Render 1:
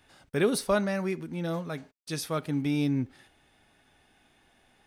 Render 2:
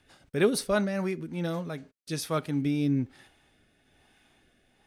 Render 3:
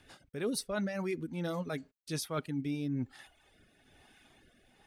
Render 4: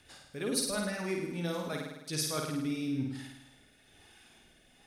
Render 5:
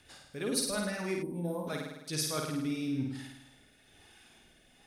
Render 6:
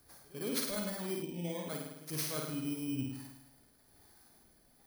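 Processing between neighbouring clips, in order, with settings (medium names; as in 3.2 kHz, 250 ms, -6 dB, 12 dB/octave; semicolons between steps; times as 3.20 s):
rotary cabinet horn 6.3 Hz, later 1.1 Hz, at 0.49 s; trim +2 dB
reverb removal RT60 0.67 s; reverse; compression 6:1, threshold -35 dBFS, peak gain reduction 16.5 dB; reverse; trim +3 dB
peaking EQ 7.9 kHz +7 dB 2.9 oct; on a send: flutter echo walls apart 9 m, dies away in 0.94 s; on the sum: trim -2 dB
time-frequency box 1.23–1.68 s, 1.1–8.4 kHz -22 dB
bit-reversed sample order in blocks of 16 samples; pre-echo 106 ms -20 dB; trim -3.5 dB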